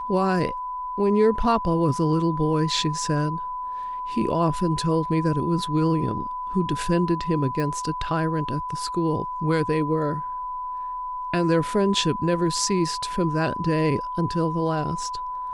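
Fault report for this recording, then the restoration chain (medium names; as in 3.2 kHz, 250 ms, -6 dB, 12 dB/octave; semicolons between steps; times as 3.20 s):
whine 1 kHz -28 dBFS
7.60 s: pop -17 dBFS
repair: de-click; band-stop 1 kHz, Q 30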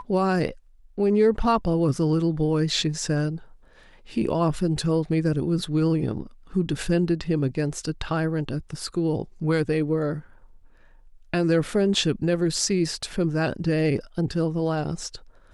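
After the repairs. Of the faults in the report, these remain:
nothing left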